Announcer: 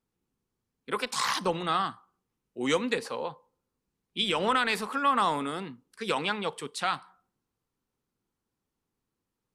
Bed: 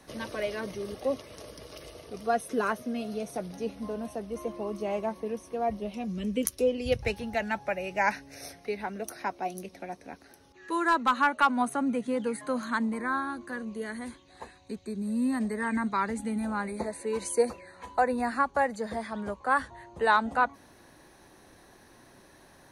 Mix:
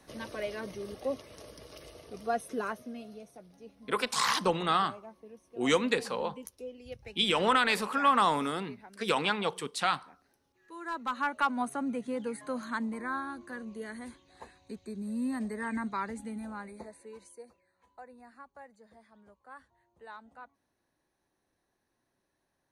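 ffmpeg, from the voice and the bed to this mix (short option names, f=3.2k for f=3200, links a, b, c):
-filter_complex "[0:a]adelay=3000,volume=0.5dB[a];[1:a]volume=8dB,afade=t=out:st=2.36:d=0.98:silence=0.223872,afade=t=in:st=10.75:d=0.66:silence=0.251189,afade=t=out:st=15.79:d=1.6:silence=0.105925[b];[a][b]amix=inputs=2:normalize=0"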